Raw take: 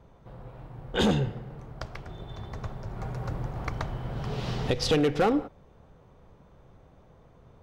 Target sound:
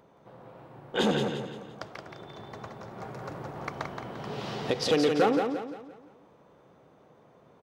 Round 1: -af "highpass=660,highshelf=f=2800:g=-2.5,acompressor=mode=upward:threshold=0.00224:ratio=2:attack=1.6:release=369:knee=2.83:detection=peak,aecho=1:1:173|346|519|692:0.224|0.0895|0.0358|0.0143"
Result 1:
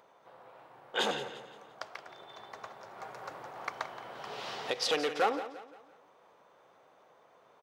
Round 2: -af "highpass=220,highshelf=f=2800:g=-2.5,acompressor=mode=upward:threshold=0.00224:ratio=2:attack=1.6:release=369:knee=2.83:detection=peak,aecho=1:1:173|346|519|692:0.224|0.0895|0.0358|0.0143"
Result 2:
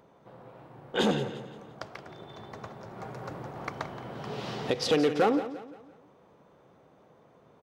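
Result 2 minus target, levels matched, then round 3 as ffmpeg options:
echo-to-direct -7.5 dB
-af "highpass=220,highshelf=f=2800:g=-2.5,acompressor=mode=upward:threshold=0.00224:ratio=2:attack=1.6:release=369:knee=2.83:detection=peak,aecho=1:1:173|346|519|692|865:0.531|0.212|0.0849|0.034|0.0136"

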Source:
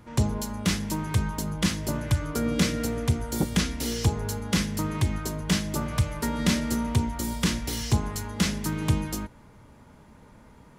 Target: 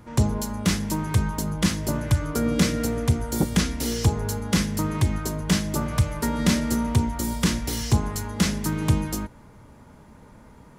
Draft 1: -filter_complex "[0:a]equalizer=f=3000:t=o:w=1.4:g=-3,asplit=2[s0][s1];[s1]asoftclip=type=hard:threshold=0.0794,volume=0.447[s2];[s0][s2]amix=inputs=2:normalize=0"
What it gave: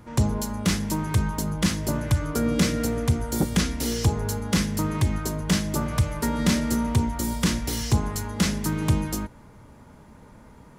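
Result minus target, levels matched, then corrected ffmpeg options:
hard clipper: distortion +15 dB
-filter_complex "[0:a]equalizer=f=3000:t=o:w=1.4:g=-3,asplit=2[s0][s1];[s1]asoftclip=type=hard:threshold=0.188,volume=0.447[s2];[s0][s2]amix=inputs=2:normalize=0"

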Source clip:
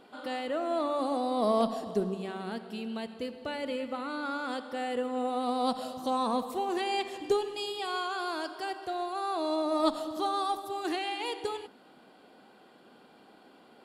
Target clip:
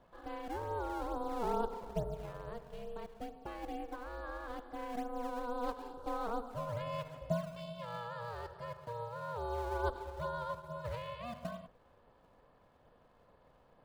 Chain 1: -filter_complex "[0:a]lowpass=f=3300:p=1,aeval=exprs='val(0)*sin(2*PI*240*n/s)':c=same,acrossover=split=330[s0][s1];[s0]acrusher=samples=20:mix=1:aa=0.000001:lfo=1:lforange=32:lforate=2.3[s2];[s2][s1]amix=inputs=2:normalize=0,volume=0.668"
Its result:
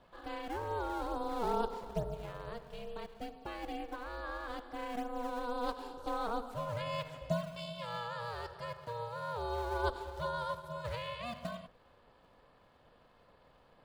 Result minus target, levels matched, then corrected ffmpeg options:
4 kHz band +5.5 dB
-filter_complex "[0:a]lowpass=f=990:p=1,aeval=exprs='val(0)*sin(2*PI*240*n/s)':c=same,acrossover=split=330[s0][s1];[s0]acrusher=samples=20:mix=1:aa=0.000001:lfo=1:lforange=32:lforate=2.3[s2];[s2][s1]amix=inputs=2:normalize=0,volume=0.668"

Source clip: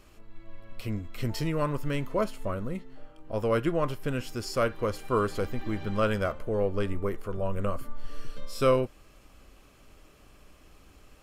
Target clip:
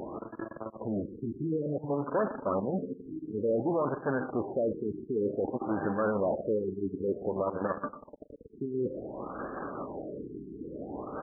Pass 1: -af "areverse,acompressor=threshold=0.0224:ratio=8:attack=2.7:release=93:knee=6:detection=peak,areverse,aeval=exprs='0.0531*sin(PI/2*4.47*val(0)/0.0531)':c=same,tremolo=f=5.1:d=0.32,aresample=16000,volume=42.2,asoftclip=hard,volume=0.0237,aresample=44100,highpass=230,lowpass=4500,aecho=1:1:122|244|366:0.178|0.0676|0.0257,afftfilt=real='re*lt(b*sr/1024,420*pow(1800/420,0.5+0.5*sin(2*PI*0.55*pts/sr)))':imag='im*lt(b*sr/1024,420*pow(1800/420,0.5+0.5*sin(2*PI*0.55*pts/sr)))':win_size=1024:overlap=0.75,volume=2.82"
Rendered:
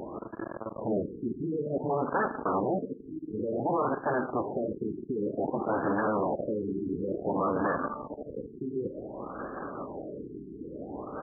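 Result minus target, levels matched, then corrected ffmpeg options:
compression: peak gain reduction -8.5 dB
-af "areverse,acompressor=threshold=0.0075:ratio=8:attack=2.7:release=93:knee=6:detection=peak,areverse,aeval=exprs='0.0531*sin(PI/2*4.47*val(0)/0.0531)':c=same,tremolo=f=5.1:d=0.32,aresample=16000,volume=42.2,asoftclip=hard,volume=0.0237,aresample=44100,highpass=230,lowpass=4500,aecho=1:1:122|244|366:0.178|0.0676|0.0257,afftfilt=real='re*lt(b*sr/1024,420*pow(1800/420,0.5+0.5*sin(2*PI*0.55*pts/sr)))':imag='im*lt(b*sr/1024,420*pow(1800/420,0.5+0.5*sin(2*PI*0.55*pts/sr)))':win_size=1024:overlap=0.75,volume=2.82"

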